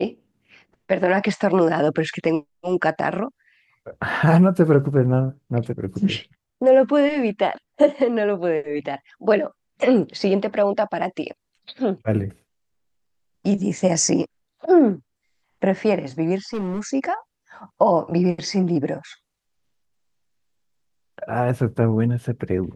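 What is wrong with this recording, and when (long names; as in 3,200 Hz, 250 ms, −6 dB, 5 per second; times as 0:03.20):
0:16.53–0:16.81: clipping −22 dBFS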